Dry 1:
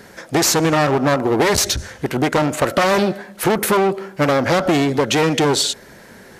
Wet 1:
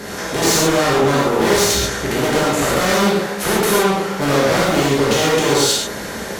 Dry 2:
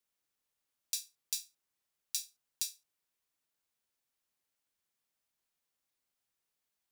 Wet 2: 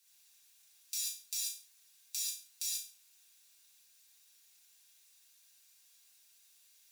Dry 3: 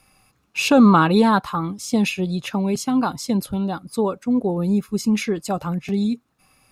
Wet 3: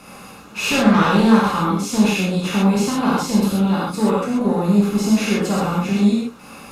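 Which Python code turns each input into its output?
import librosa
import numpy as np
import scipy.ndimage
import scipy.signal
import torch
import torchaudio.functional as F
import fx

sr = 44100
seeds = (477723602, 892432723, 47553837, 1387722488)

y = fx.bin_compress(x, sr, power=0.6)
y = fx.cheby_harmonics(y, sr, harmonics=(5,), levels_db=(-8,), full_scale_db=0.5)
y = fx.rev_gated(y, sr, seeds[0], gate_ms=160, shape='flat', drr_db=-7.0)
y = y * 10.0 ** (-16.5 / 20.0)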